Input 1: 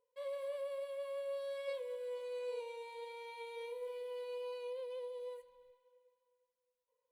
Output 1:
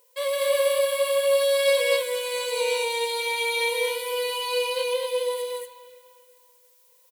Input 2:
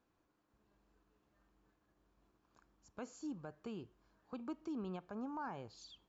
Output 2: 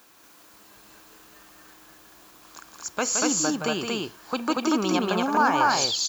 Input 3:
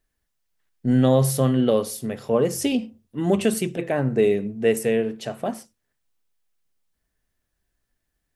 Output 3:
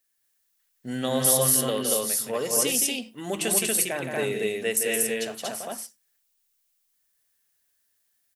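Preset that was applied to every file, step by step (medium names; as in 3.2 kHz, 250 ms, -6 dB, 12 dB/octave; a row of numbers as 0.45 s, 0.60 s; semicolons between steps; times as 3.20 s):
tilt EQ +4 dB/octave; loudspeakers at several distances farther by 58 m -6 dB, 81 m -1 dB; normalise loudness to -24 LUFS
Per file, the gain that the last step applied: +18.5 dB, +23.0 dB, -5.0 dB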